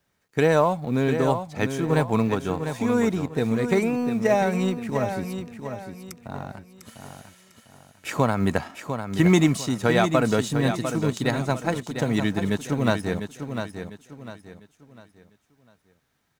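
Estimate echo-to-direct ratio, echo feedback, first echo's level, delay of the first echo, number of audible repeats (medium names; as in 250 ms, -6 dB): -7.5 dB, 34%, -8.0 dB, 700 ms, 3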